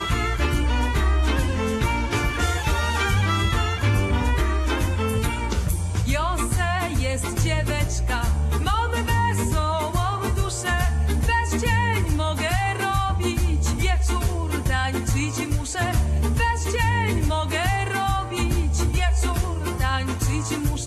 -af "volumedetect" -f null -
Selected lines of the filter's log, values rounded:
mean_volume: -21.7 dB
max_volume: -8.8 dB